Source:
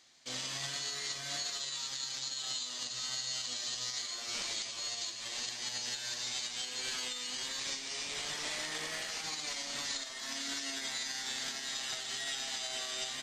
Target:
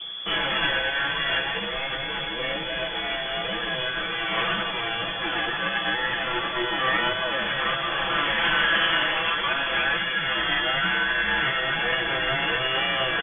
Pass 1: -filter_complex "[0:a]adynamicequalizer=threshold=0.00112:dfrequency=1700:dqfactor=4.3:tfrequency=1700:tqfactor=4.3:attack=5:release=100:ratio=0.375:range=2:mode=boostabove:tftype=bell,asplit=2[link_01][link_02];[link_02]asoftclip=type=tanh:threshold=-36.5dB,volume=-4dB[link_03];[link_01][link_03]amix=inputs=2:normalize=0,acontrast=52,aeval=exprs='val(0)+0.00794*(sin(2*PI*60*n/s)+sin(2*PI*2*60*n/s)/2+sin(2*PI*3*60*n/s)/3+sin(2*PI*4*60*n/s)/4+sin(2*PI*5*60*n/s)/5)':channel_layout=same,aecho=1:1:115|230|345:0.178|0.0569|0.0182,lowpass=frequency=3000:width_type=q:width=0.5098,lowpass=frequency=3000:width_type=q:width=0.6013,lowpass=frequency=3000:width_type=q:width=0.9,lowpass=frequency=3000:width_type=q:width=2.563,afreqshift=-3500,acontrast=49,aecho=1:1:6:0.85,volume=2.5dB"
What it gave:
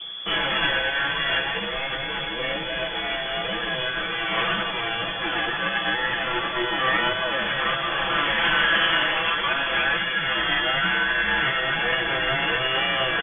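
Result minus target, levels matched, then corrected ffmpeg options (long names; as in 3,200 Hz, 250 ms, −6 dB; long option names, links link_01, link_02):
soft clipping: distortion −6 dB
-filter_complex "[0:a]adynamicequalizer=threshold=0.00112:dfrequency=1700:dqfactor=4.3:tfrequency=1700:tqfactor=4.3:attack=5:release=100:ratio=0.375:range=2:mode=boostabove:tftype=bell,asplit=2[link_01][link_02];[link_02]asoftclip=type=tanh:threshold=-45.5dB,volume=-4dB[link_03];[link_01][link_03]amix=inputs=2:normalize=0,acontrast=52,aeval=exprs='val(0)+0.00794*(sin(2*PI*60*n/s)+sin(2*PI*2*60*n/s)/2+sin(2*PI*3*60*n/s)/3+sin(2*PI*4*60*n/s)/4+sin(2*PI*5*60*n/s)/5)':channel_layout=same,aecho=1:1:115|230|345:0.178|0.0569|0.0182,lowpass=frequency=3000:width_type=q:width=0.5098,lowpass=frequency=3000:width_type=q:width=0.6013,lowpass=frequency=3000:width_type=q:width=0.9,lowpass=frequency=3000:width_type=q:width=2.563,afreqshift=-3500,acontrast=49,aecho=1:1:6:0.85,volume=2.5dB"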